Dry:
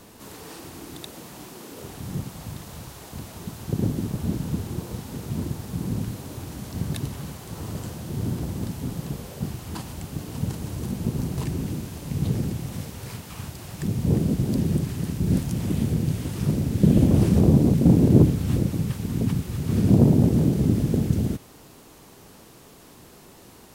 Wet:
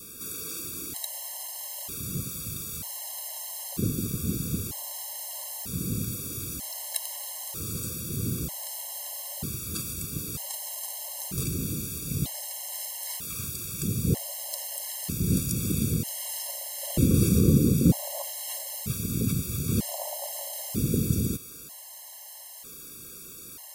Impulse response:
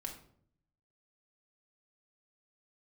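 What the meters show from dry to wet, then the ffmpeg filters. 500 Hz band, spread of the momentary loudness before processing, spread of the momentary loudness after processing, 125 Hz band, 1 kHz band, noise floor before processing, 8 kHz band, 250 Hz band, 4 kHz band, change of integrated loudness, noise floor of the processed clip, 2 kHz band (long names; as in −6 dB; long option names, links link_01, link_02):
−7.0 dB, 21 LU, 9 LU, −7.0 dB, −5.0 dB, −49 dBFS, +10.0 dB, −7.0 dB, +4.0 dB, −5.5 dB, −44 dBFS, −2.0 dB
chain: -af "crystalizer=i=5.5:c=0,adynamicequalizer=threshold=0.00178:dfrequency=1600:dqfactor=4.6:tfrequency=1600:tqfactor=4.6:attack=5:release=100:ratio=0.375:range=2.5:mode=cutabove:tftype=bell,afftfilt=real='re*gt(sin(2*PI*0.53*pts/sr)*(1-2*mod(floor(b*sr/1024/550),2)),0)':imag='im*gt(sin(2*PI*0.53*pts/sr)*(1-2*mod(floor(b*sr/1024/550),2)),0)':win_size=1024:overlap=0.75,volume=-3.5dB"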